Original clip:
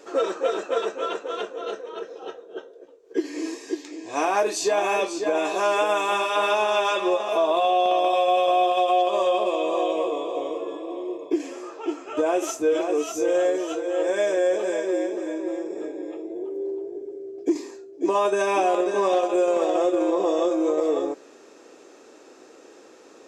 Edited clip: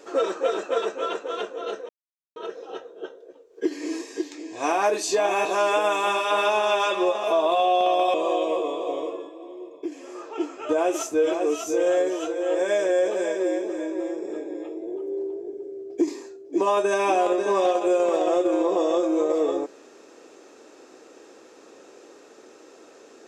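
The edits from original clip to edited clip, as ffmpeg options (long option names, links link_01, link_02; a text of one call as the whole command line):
ffmpeg -i in.wav -filter_complex "[0:a]asplit=6[link_01][link_02][link_03][link_04][link_05][link_06];[link_01]atrim=end=1.89,asetpts=PTS-STARTPTS,afade=type=out:start_time=1.886:duration=0.004:curve=hsin,apad=pad_dur=0.47[link_07];[link_02]atrim=start=1.89:end=4.982,asetpts=PTS-STARTPTS,afade=type=in:duration=0.004:curve=hsin[link_08];[link_03]atrim=start=5.498:end=8.192[link_09];[link_04]atrim=start=9.618:end=10.78,asetpts=PTS-STARTPTS,afade=type=out:start_time=0.922:duration=0.24:silence=0.398107[link_10];[link_05]atrim=start=10.78:end=11.46,asetpts=PTS-STARTPTS,volume=-8dB[link_11];[link_06]atrim=start=11.46,asetpts=PTS-STARTPTS,afade=type=in:duration=0.24:silence=0.398107[link_12];[link_07][link_08]concat=n=2:v=0:a=1[link_13];[link_13][link_09]acrossfade=duration=0.004:curve1=hsin:curve2=hsin[link_14];[link_10][link_11][link_12]concat=n=3:v=0:a=1[link_15];[link_14][link_15]acrossfade=duration=0.004:curve1=hsin:curve2=hsin" out.wav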